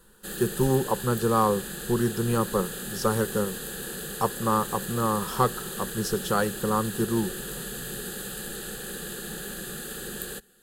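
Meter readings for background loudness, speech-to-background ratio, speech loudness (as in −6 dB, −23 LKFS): −34.5 LKFS, 7.5 dB, −27.0 LKFS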